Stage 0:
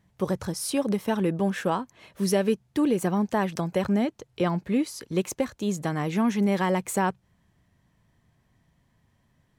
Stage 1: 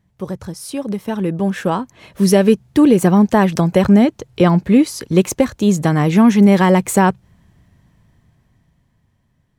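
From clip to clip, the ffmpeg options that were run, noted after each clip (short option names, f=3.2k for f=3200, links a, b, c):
-af "dynaudnorm=f=270:g=13:m=16.5dB,lowshelf=f=250:g=6,volume=-1.5dB"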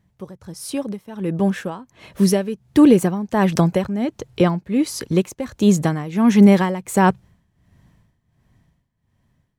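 -af "tremolo=f=1.4:d=0.82"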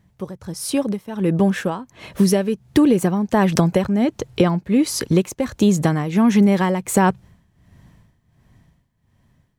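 -af "acompressor=threshold=-17dB:ratio=5,volume=5dB"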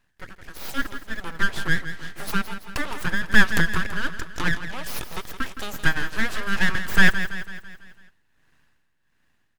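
-filter_complex "[0:a]highpass=f=820:t=q:w=8.7,aeval=exprs='abs(val(0))':c=same,asplit=2[a][b];[b]aecho=0:1:166|332|498|664|830|996:0.282|0.147|0.0762|0.0396|0.0206|0.0107[c];[a][c]amix=inputs=2:normalize=0,volume=-4dB"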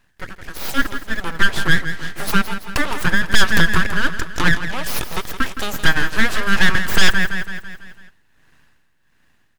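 -af "aeval=exprs='clip(val(0),-1,0.266)':c=same,volume=8dB"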